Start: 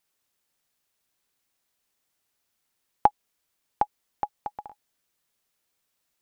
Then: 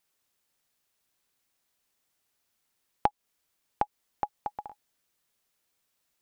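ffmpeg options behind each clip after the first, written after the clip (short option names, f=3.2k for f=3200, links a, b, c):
-af "acompressor=threshold=-26dB:ratio=2"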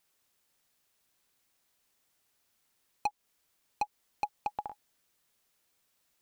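-af "volume=26.5dB,asoftclip=hard,volume=-26.5dB,volume=2.5dB"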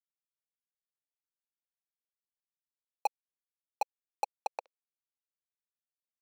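-af "acrusher=bits=3:mix=0:aa=0.5,highpass=f=520:t=q:w=4.8"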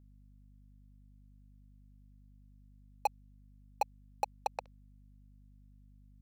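-filter_complex "[0:a]asplit=2[a][b];[b]aeval=exprs='0.0251*(abs(mod(val(0)/0.0251+3,4)-2)-1)':c=same,volume=-11.5dB[c];[a][c]amix=inputs=2:normalize=0,aeval=exprs='val(0)+0.00126*(sin(2*PI*50*n/s)+sin(2*PI*2*50*n/s)/2+sin(2*PI*3*50*n/s)/3+sin(2*PI*4*50*n/s)/4+sin(2*PI*5*50*n/s)/5)':c=same"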